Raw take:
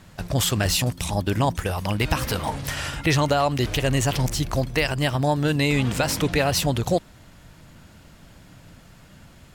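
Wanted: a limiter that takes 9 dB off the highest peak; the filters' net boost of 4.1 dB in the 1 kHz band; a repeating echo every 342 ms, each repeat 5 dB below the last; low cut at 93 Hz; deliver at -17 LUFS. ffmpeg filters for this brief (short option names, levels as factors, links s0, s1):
-af "highpass=93,equalizer=f=1000:t=o:g=5.5,alimiter=limit=0.188:level=0:latency=1,aecho=1:1:342|684|1026|1368|1710|2052|2394:0.562|0.315|0.176|0.0988|0.0553|0.031|0.0173,volume=2.24"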